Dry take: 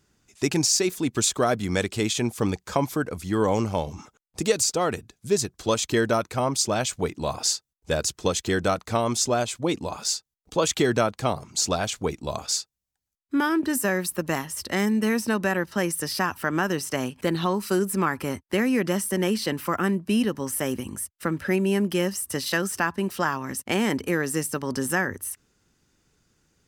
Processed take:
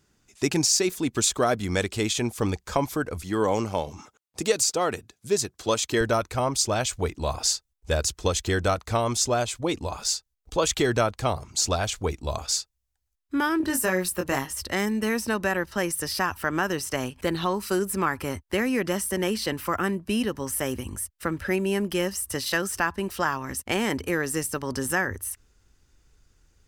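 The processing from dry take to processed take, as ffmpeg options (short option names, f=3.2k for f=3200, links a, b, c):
-filter_complex "[0:a]asettb=1/sr,asplit=3[a][b][c];[a]atrim=end=3.224[d];[b]atrim=start=3.22:end=6.01,asetpts=PTS-STARTPTS,afade=t=in:d=0.004:c=qsin,afade=t=out:st=2.786:d=0.004:c=qsin,highpass=140[e];[c]atrim=start=6.006[f];[d][e]acrossfade=d=0.004:c1=hsin:c2=qsin[g];[g][f]acrossfade=d=0.004:c1=qsin:c2=hsin,asettb=1/sr,asplit=3[h][i][j];[h]atrim=end=13.584[k];[i]atrim=start=13.58:end=14.53,asetpts=PTS-STARTPTS,afade=t=in:d=0.004:c=qsin,afade=t=out:st=0.946:d=0.004:c=qsin,asplit=2[l][m];[m]adelay=22,volume=-5dB[n];[l][n]amix=inputs=2:normalize=0,atrim=end_sample=41895[o];[j]atrim=start=14.526[p];[k][o]acrossfade=d=0.004:c1=hsin:c2=qsin[q];[q][p]acrossfade=d=0.004:c1=qsin:c2=hsin,asubboost=boost=7.5:cutoff=61"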